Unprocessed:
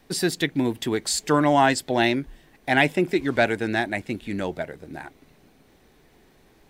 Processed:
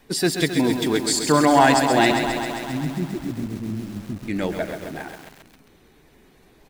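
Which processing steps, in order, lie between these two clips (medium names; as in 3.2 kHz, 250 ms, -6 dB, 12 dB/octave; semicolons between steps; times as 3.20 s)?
coarse spectral quantiser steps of 15 dB; 2.11–4.28 s: inverse Chebyshev low-pass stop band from 1.1 kHz, stop band 70 dB; delay 118 ms -15.5 dB; bit-crushed delay 133 ms, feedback 80%, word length 7-bit, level -7 dB; trim +3 dB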